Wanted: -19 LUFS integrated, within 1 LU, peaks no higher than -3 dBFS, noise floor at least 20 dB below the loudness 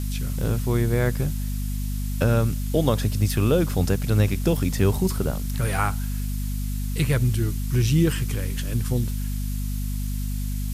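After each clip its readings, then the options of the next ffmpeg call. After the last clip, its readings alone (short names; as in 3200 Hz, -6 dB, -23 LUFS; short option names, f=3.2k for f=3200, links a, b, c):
hum 50 Hz; harmonics up to 250 Hz; hum level -24 dBFS; noise floor -27 dBFS; noise floor target -45 dBFS; loudness -24.5 LUFS; peak -7.5 dBFS; loudness target -19.0 LUFS
-> -af "bandreject=f=50:t=h:w=4,bandreject=f=100:t=h:w=4,bandreject=f=150:t=h:w=4,bandreject=f=200:t=h:w=4,bandreject=f=250:t=h:w=4"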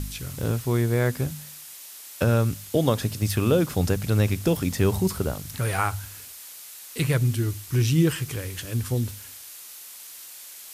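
hum none; noise floor -43 dBFS; noise floor target -45 dBFS
-> -af "afftdn=nr=6:nf=-43"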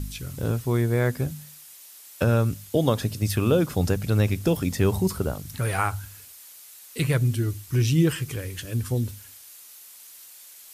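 noise floor -47 dBFS; loudness -25.0 LUFS; peak -9.5 dBFS; loudness target -19.0 LUFS
-> -af "volume=6dB"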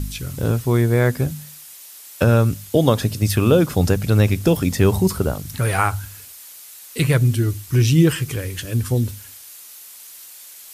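loudness -19.0 LUFS; peak -3.5 dBFS; noise floor -41 dBFS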